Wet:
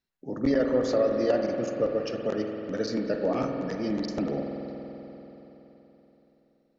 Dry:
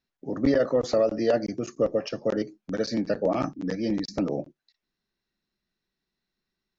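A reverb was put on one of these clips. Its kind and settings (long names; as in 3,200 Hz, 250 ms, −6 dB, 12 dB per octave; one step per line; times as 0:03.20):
spring reverb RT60 3.8 s, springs 47 ms, chirp 40 ms, DRR 2.5 dB
level −3 dB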